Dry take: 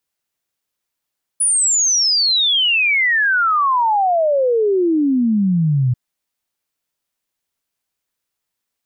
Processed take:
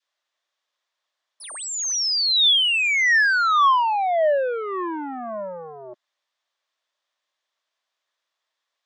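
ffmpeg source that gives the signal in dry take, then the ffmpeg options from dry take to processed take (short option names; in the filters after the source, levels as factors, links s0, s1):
-f lavfi -i "aevalsrc='0.237*clip(min(t,4.54-t)/0.01,0,1)*sin(2*PI*10000*4.54/log(120/10000)*(exp(log(120/10000)*t/4.54)-1))':d=4.54:s=44100"
-af "adynamicequalizer=threshold=0.0355:dfrequency=750:dqfactor=0.98:tfrequency=750:tqfactor=0.98:attack=5:release=100:ratio=0.375:range=3:mode=cutabove:tftype=bell,asoftclip=type=tanh:threshold=0.0891,highpass=f=370:w=0.5412,highpass=f=370:w=1.3066,equalizer=f=420:t=q:w=4:g=-7,equalizer=f=610:t=q:w=4:g=7,equalizer=f=1100:t=q:w=4:g=8,equalizer=f=1800:t=q:w=4:g=6,equalizer=f=3500:t=q:w=4:g=7,lowpass=f=6400:w=0.5412,lowpass=f=6400:w=1.3066"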